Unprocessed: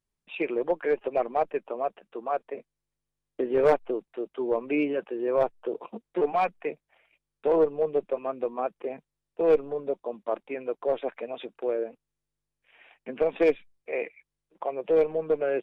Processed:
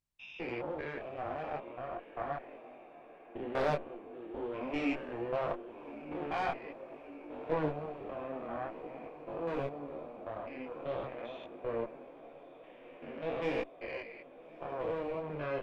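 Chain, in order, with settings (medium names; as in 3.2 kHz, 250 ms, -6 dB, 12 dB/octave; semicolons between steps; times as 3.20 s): spectrogram pixelated in time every 200 ms; peaking EQ 430 Hz -9.5 dB 0.51 oct; on a send: echo that smears into a reverb 1321 ms, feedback 70%, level -14.5 dB; on the sum: Chebyshev shaper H 6 -18 dB, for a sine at -16.5 dBFS; detune thickener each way 15 cents; trim +1 dB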